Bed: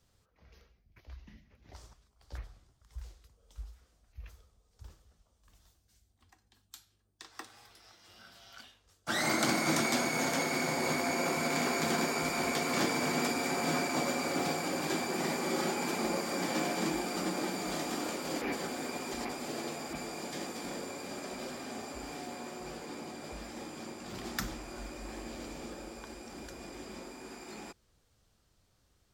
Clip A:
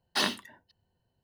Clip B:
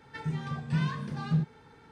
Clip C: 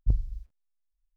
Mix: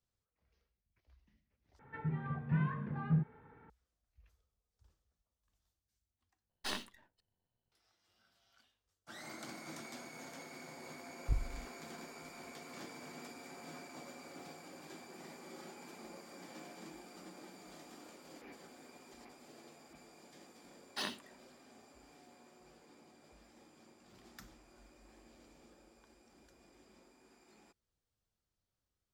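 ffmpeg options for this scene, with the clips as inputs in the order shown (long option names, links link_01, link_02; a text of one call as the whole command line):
ffmpeg -i bed.wav -i cue0.wav -i cue1.wav -i cue2.wav -filter_complex "[1:a]asplit=2[link_01][link_02];[0:a]volume=-19dB[link_03];[2:a]lowpass=frequency=2100:width=0.5412,lowpass=frequency=2100:width=1.3066[link_04];[link_01]aeval=exprs='if(lt(val(0),0),0.251*val(0),val(0))':channel_layout=same[link_05];[link_03]asplit=3[link_06][link_07][link_08];[link_06]atrim=end=1.794[link_09];[link_04]atrim=end=1.91,asetpts=PTS-STARTPTS,volume=-4.5dB[link_10];[link_07]atrim=start=3.696:end=6.494[link_11];[link_05]atrim=end=1.23,asetpts=PTS-STARTPTS,volume=-9dB[link_12];[link_08]atrim=start=7.716[link_13];[3:a]atrim=end=1.16,asetpts=PTS-STARTPTS,volume=-9.5dB,afade=type=in:duration=0.004:curve=hsin,afade=type=out:start_time=1.156:duration=0.004:curve=hsin,adelay=494802S[link_14];[link_02]atrim=end=1.23,asetpts=PTS-STARTPTS,volume=-12dB,afade=type=in:duration=0.004:curve=hsin,afade=type=out:start_time=1.226:duration=0.004:curve=hsin,adelay=20810[link_15];[link_09][link_10]acrossfade=duration=0.004:curve1=hsin:curve2=hsin[link_16];[link_16][link_11]acrossfade=duration=0.004:curve1=hsin:curve2=hsin[link_17];[link_17][link_12]acrossfade=duration=0.004:curve1=hsin:curve2=hsin[link_18];[link_18][link_13]acrossfade=duration=0.004:curve1=hsin:curve2=hsin[link_19];[link_19][link_14][link_15]amix=inputs=3:normalize=0" out.wav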